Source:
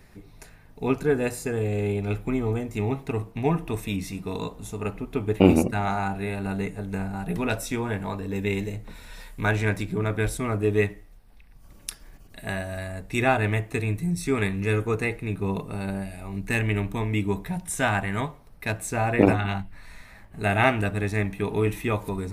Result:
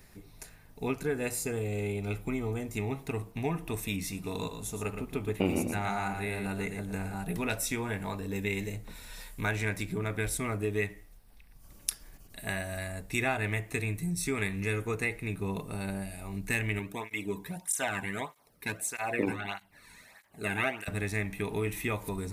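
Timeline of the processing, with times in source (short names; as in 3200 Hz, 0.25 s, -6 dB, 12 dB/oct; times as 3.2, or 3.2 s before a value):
1.26–2.52 notch 1700 Hz, Q 9.4
4.12–7.14 echo 0.116 s -8 dB
16.79–20.88 tape flanging out of phase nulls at 1.6 Hz, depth 1.7 ms
whole clip: dynamic EQ 2100 Hz, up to +5 dB, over -45 dBFS, Q 2.4; compressor 2:1, threshold -26 dBFS; high shelf 4700 Hz +10 dB; gain -4.5 dB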